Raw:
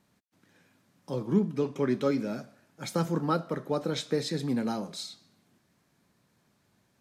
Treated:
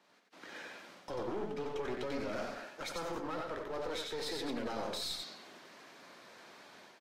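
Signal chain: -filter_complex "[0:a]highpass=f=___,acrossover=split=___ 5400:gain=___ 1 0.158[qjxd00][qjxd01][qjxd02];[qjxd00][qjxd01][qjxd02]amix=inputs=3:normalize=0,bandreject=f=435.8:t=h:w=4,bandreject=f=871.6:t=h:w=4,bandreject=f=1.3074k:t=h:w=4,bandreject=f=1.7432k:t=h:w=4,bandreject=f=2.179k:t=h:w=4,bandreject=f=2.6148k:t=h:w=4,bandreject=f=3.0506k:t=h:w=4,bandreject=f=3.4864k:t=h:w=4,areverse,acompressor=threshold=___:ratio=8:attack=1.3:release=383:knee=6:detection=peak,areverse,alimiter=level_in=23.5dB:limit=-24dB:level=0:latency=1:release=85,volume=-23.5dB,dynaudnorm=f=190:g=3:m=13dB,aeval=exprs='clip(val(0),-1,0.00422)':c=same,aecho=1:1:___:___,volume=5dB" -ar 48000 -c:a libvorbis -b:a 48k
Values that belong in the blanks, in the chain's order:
140, 350, 0.0891, -43dB, 92, 0.631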